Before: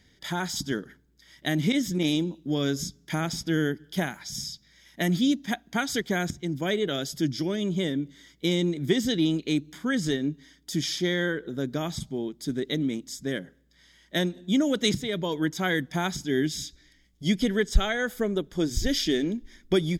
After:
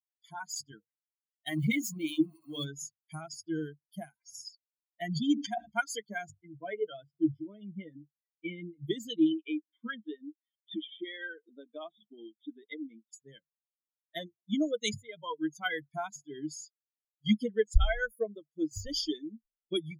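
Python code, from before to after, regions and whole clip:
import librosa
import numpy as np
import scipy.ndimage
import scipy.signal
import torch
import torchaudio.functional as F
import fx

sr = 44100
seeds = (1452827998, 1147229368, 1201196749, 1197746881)

y = fx.chain(x, sr, fx.zero_step(step_db=-28.5),
    fx.hum_notches(base_hz=50, count=9), at=(1.47, 2.66))
y = fx.chain(y, sr, fx.lowpass(hz=8500.0, slope=12),
    fx.sustainer(db_per_s=33.0), at=(5.02, 5.69))
y = fx.chain(y, sr, fx.savgol(points=25),
    fx.doubler(ms=16.0, db=-12), at=(6.32, 8.74))
y = fx.chain(y, sr, fx.brickwall_bandpass(low_hz=180.0, high_hz=3800.0),
    fx.band_squash(depth_pct=100), at=(9.31, 13.13))
y = fx.bin_expand(y, sr, power=3.0)
y = fx.ripple_eq(y, sr, per_octave=1.8, db=12)
y = y * 10.0 ** (-1.5 / 20.0)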